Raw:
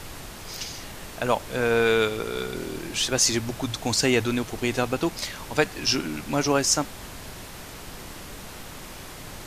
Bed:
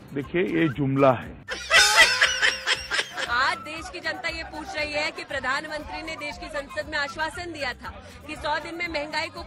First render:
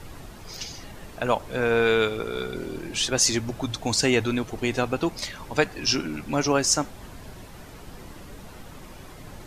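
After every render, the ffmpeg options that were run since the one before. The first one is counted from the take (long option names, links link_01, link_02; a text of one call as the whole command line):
ffmpeg -i in.wav -af "afftdn=noise_reduction=9:noise_floor=-40" out.wav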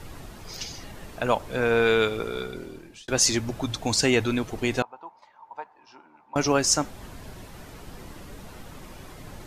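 ffmpeg -i in.wav -filter_complex "[0:a]asettb=1/sr,asplit=3[link_01][link_02][link_03];[link_01]atrim=end=4.824[link_04];[link_02]atrim=start=4.82:end=6.36,asetpts=PTS-STARTPTS,afade=type=in:duration=0.004:curve=qsin,afade=type=out:start_time=1.536:duration=0.004:curve=qsin,bandpass=frequency=910:width_type=q:width=9.2[link_05];[link_03]atrim=start=6.356[link_06];[link_04][link_05]acrossfade=duration=0.004:curve1=hsin:curve2=qsin[link_07];[link_07][link_06]acrossfade=duration=0.004:curve1=qsin:curve2=hsin,asplit=2[link_08][link_09];[link_08]atrim=end=3.08,asetpts=PTS-STARTPTS,afade=type=out:start_time=2.24:duration=0.84[link_10];[link_09]atrim=start=3.08,asetpts=PTS-STARTPTS,afade=type=in:duration=0.004:curve=hsin[link_11];[link_10][link_11]concat=n=2:v=0:a=1" out.wav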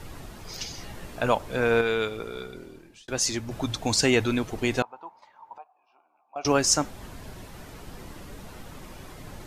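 ffmpeg -i in.wav -filter_complex "[0:a]asettb=1/sr,asplit=3[link_01][link_02][link_03];[link_01]atrim=end=0.764[link_04];[link_02]atrim=start=0.76:end=1.29,asetpts=PTS-STARTPTS,afade=type=in:duration=0.004:curve=qsin,afade=type=out:start_time=0.526:duration=0.004:curve=qsin,asplit=2[link_05][link_06];[link_06]adelay=17,volume=-5.5dB[link_07];[link_05][link_07]amix=inputs=2:normalize=0,atrim=end_sample=23373[link_08];[link_03]atrim=start=1.286[link_09];[link_04][link_08]acrossfade=duration=0.004:curve1=hsin:curve2=qsin[link_10];[link_10][link_09]acrossfade=duration=0.004:curve1=qsin:curve2=hsin,asettb=1/sr,asplit=3[link_11][link_12][link_13];[link_11]atrim=end=5.584[link_14];[link_12]atrim=start=5.58:end=6.45,asetpts=PTS-STARTPTS,afade=type=in:duration=0.004:curve=qsin,afade=type=out:start_time=0.866:duration=0.004:curve=qsin,asplit=3[link_15][link_16][link_17];[link_15]bandpass=frequency=730:width_type=q:width=8,volume=0dB[link_18];[link_16]bandpass=frequency=1090:width_type=q:width=8,volume=-6dB[link_19];[link_17]bandpass=frequency=2440:width_type=q:width=8,volume=-9dB[link_20];[link_18][link_19][link_20]amix=inputs=3:normalize=0[link_21];[link_13]atrim=start=6.446[link_22];[link_14][link_21]acrossfade=duration=0.004:curve1=hsin:curve2=qsin[link_23];[link_23][link_22]acrossfade=duration=0.004:curve1=qsin:curve2=hsin,asplit=3[link_24][link_25][link_26];[link_24]atrim=end=1.812[link_27];[link_25]atrim=start=1.808:end=3.512,asetpts=PTS-STARTPTS,volume=-5dB[link_28];[link_26]atrim=start=3.508[link_29];[link_27][link_28]acrossfade=duration=0.004:curve1=hsin:curve2=hsin[link_30];[link_30][link_29]acrossfade=duration=0.004:curve1=hsin:curve2=hsin" out.wav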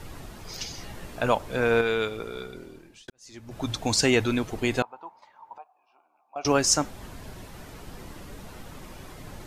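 ffmpeg -i in.wav -filter_complex "[0:a]asettb=1/sr,asplit=3[link_01][link_02][link_03];[link_01]atrim=end=4.584[link_04];[link_02]atrim=start=4.58:end=5,asetpts=PTS-STARTPTS,afade=type=in:duration=0.004:curve=qsin,afade=type=out:start_time=0.416:duration=0.004:curve=qsin,bandreject=frequency=5700:width=8.3[link_05];[link_03]atrim=start=4.996[link_06];[link_04][link_05]acrossfade=duration=0.004:curve1=hsin:curve2=qsin[link_07];[link_07][link_06]acrossfade=duration=0.004:curve1=qsin:curve2=hsin,asplit=2[link_08][link_09];[link_08]atrim=end=3.1,asetpts=PTS-STARTPTS,afade=type=out:start_time=3.096:duration=0.004:curve=hsin[link_10];[link_09]atrim=start=3.1,asetpts=PTS-STARTPTS,afade=type=in:duration=0.59:curve=qua[link_11];[link_10][link_11]concat=n=2:v=0:a=1" out.wav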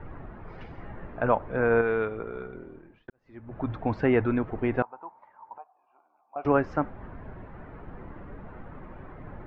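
ffmpeg -i in.wav -af "lowpass=frequency=1800:width=0.5412,lowpass=frequency=1800:width=1.3066" out.wav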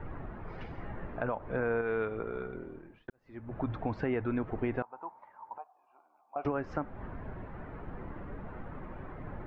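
ffmpeg -i in.wav -af "alimiter=limit=-17dB:level=0:latency=1:release=214,acompressor=threshold=-32dB:ratio=2" out.wav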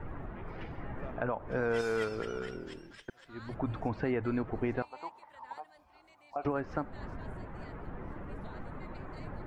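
ffmpeg -i in.wav -i bed.wav -filter_complex "[1:a]volume=-30dB[link_01];[0:a][link_01]amix=inputs=2:normalize=0" out.wav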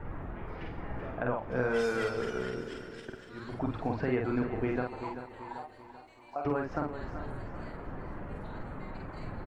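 ffmpeg -i in.wav -filter_complex "[0:a]asplit=2[link_01][link_02];[link_02]adelay=48,volume=-3dB[link_03];[link_01][link_03]amix=inputs=2:normalize=0,aecho=1:1:387|774|1161|1548|1935:0.282|0.13|0.0596|0.0274|0.0126" out.wav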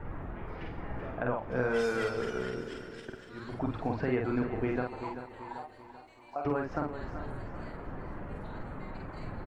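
ffmpeg -i in.wav -af anull out.wav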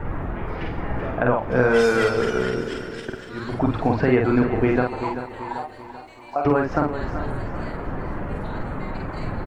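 ffmpeg -i in.wav -af "volume=12dB" out.wav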